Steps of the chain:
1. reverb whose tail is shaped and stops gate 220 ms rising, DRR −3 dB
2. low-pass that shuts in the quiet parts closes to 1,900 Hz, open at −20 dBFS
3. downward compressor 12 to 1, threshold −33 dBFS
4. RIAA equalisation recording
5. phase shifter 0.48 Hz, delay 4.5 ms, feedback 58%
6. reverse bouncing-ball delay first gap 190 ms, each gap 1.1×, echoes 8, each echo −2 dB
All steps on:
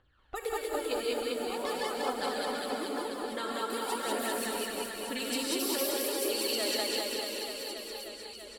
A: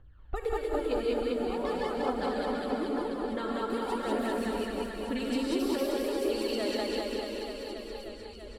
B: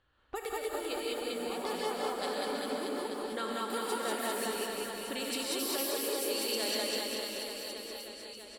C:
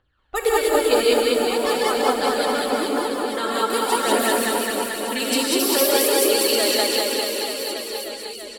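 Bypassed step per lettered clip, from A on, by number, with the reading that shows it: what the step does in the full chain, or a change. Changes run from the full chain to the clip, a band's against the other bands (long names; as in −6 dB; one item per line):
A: 4, 8 kHz band −12.5 dB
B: 5, change in integrated loudness −2.0 LU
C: 3, change in integrated loudness +13.0 LU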